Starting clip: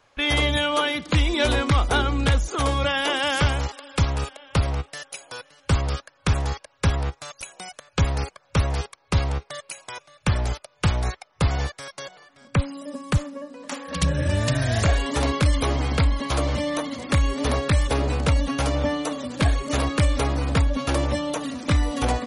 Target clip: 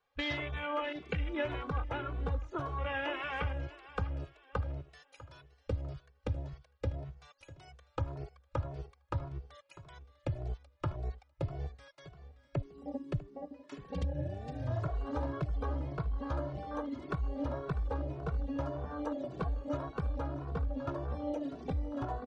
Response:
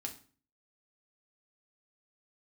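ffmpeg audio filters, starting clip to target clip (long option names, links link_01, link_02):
-filter_complex "[0:a]afwtdn=0.0562,lowpass=4500,equalizer=frequency=210:width=3.2:gain=-9.5,acompressor=threshold=-30dB:ratio=6,aecho=1:1:648|1296|1944:0.141|0.0466|0.0154,asplit=2[link_01][link_02];[link_02]adelay=2.2,afreqshift=1.8[link_03];[link_01][link_03]amix=inputs=2:normalize=1"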